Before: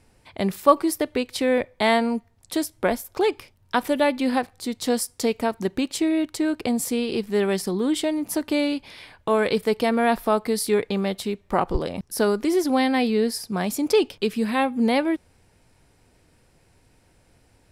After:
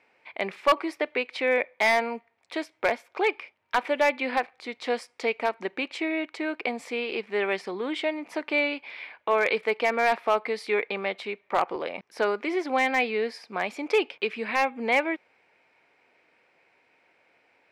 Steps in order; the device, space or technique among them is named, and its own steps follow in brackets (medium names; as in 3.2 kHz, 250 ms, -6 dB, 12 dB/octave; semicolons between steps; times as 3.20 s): megaphone (band-pass 510–2700 Hz; peaking EQ 2.3 kHz +10 dB 0.45 oct; hard clipper -14 dBFS, distortion -14 dB)